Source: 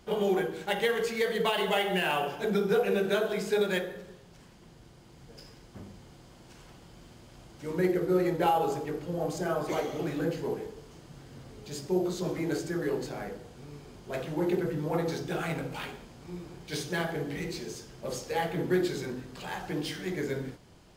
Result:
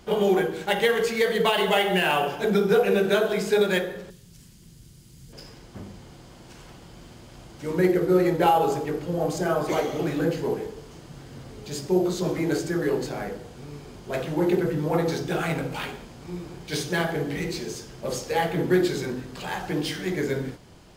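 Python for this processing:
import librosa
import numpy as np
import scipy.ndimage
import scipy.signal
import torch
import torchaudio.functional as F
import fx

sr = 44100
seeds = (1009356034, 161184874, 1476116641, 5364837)

y = fx.curve_eq(x, sr, hz=(160.0, 750.0, 11000.0), db=(0, -18, 8), at=(4.1, 5.33))
y = y * 10.0 ** (6.0 / 20.0)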